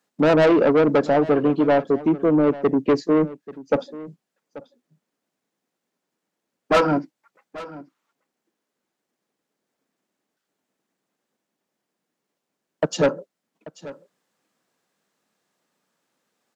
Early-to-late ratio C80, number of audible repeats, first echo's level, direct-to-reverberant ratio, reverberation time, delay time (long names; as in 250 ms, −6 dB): no reverb audible, 1, −18.0 dB, no reverb audible, no reverb audible, 836 ms